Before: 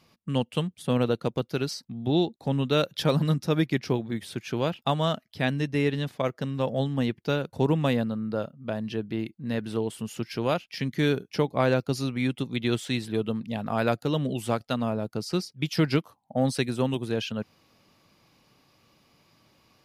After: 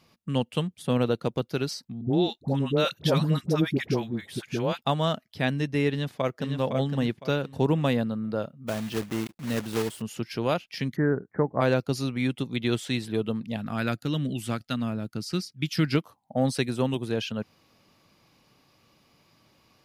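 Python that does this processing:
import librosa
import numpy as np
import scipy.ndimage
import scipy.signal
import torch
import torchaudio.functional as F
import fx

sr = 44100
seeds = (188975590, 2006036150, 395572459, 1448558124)

y = fx.dispersion(x, sr, late='highs', ms=76.0, hz=720.0, at=(2.01, 4.78))
y = fx.echo_throw(y, sr, start_s=5.89, length_s=0.66, ms=510, feedback_pct=30, wet_db=-6.0)
y = fx.block_float(y, sr, bits=3, at=(8.67, 10.0), fade=0.02)
y = fx.steep_lowpass(y, sr, hz=1900.0, slope=96, at=(10.95, 11.6), fade=0.02)
y = fx.band_shelf(y, sr, hz=650.0, db=-8.5, octaves=1.7, at=(13.56, 15.95))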